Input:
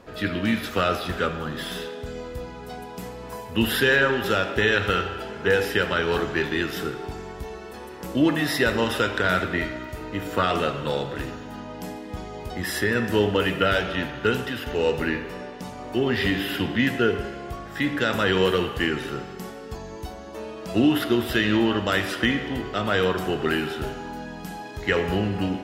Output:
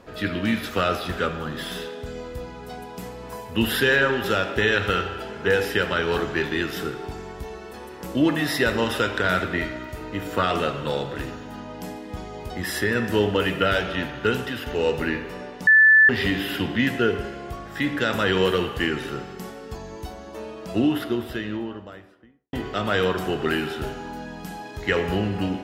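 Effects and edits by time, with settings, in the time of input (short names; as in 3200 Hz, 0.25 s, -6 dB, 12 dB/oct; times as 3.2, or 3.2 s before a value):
15.67–16.09 bleep 1750 Hz -10 dBFS
20.22–22.53 studio fade out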